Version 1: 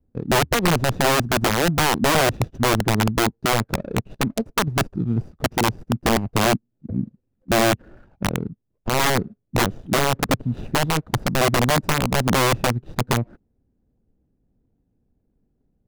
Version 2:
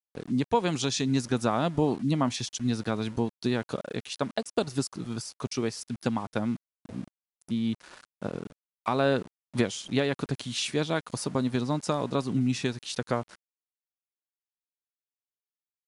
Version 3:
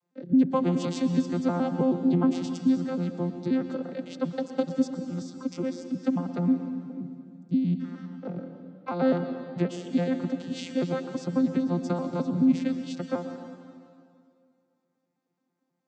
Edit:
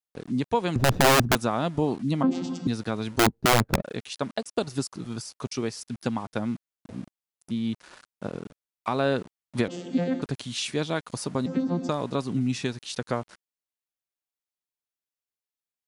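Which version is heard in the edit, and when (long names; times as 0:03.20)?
2
0:00.76–0:01.35: punch in from 1
0:02.23–0:02.67: punch in from 3
0:03.19–0:03.82: punch in from 1
0:09.68–0:10.22: punch in from 3
0:11.46–0:11.89: punch in from 3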